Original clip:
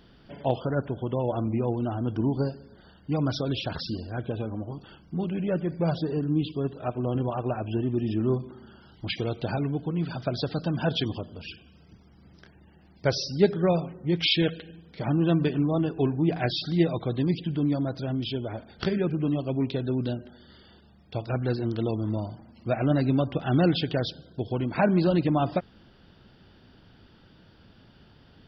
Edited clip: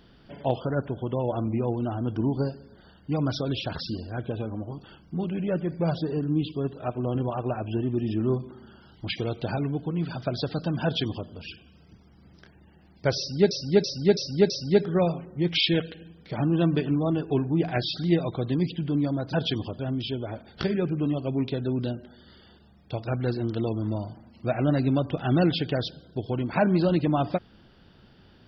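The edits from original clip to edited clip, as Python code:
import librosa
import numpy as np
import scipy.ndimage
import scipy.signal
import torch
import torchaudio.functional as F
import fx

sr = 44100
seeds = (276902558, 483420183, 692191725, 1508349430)

y = fx.edit(x, sr, fx.duplicate(start_s=10.83, length_s=0.46, to_s=18.01),
    fx.repeat(start_s=13.18, length_s=0.33, count=5), tone=tone)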